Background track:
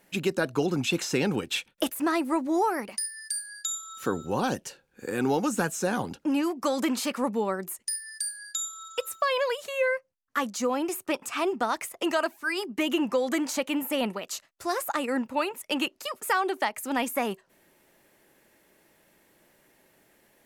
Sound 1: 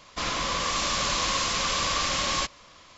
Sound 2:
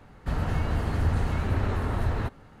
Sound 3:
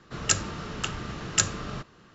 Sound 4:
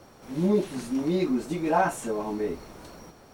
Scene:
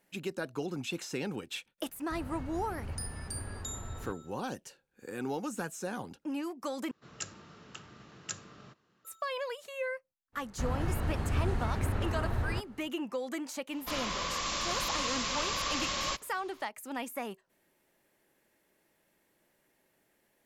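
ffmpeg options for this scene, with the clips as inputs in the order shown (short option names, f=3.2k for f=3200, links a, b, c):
-filter_complex "[2:a]asplit=2[a][b];[0:a]volume=-10dB[c];[3:a]highpass=110[d];[c]asplit=2[e][f];[e]atrim=end=6.914[g];[d]atrim=end=2.14,asetpts=PTS-STARTPTS,volume=-16.5dB[h];[f]atrim=start=9.046[i];[a]atrim=end=2.6,asetpts=PTS-STARTPTS,volume=-15.5dB,afade=t=in:d=0.004:c=hsin,afade=t=out:st=2.596:d=0.004:c=hsin,adelay=1840[j];[b]atrim=end=2.6,asetpts=PTS-STARTPTS,volume=-5.5dB,afade=t=in:d=0.05,afade=t=out:st=2.55:d=0.05,adelay=10320[k];[1:a]atrim=end=2.97,asetpts=PTS-STARTPTS,volume=-7dB,afade=t=in:d=0.004:c=hsin,afade=t=out:st=2.966:d=0.004:c=hsin,adelay=13700[l];[g][h]acrossfade=d=0.004:c1=hsin:c2=hsin[m];[m][i]acrossfade=d=0.004:c1=hsin:c2=hsin[n];[n][j][k][l]amix=inputs=4:normalize=0"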